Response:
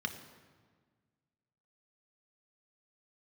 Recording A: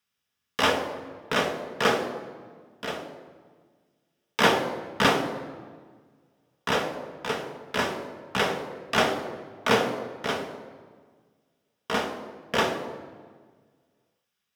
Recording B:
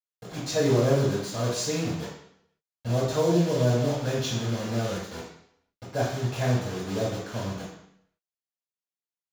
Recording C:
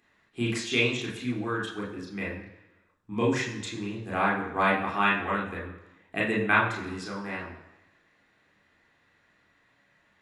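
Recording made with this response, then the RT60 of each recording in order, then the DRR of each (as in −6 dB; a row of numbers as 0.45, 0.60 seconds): A; 1.6, 0.70, 1.0 seconds; 5.0, −10.5, −4.0 decibels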